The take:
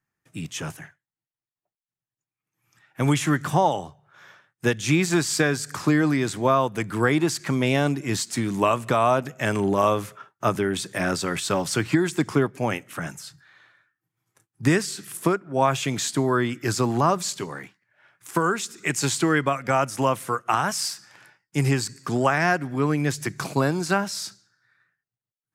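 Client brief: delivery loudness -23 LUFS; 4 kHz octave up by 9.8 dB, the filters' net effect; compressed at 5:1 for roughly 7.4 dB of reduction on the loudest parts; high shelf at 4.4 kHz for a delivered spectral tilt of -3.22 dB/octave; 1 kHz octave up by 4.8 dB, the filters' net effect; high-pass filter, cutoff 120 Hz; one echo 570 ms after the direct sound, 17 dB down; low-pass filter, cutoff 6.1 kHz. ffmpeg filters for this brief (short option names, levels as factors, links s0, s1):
-af "highpass=120,lowpass=6100,equalizer=f=1000:t=o:g=5,equalizer=f=4000:t=o:g=8,highshelf=f=4400:g=9,acompressor=threshold=0.112:ratio=5,aecho=1:1:570:0.141,volume=1.19"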